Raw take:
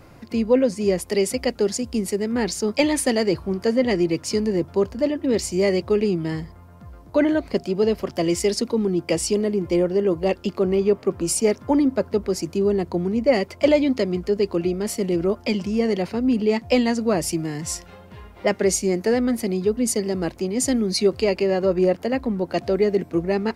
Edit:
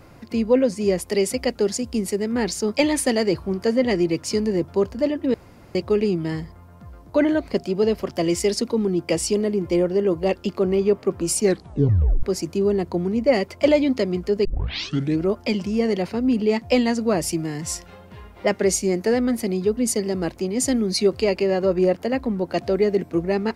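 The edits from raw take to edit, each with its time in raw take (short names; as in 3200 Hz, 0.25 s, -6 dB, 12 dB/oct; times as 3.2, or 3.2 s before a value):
5.34–5.75 room tone
11.4 tape stop 0.83 s
14.45 tape start 0.77 s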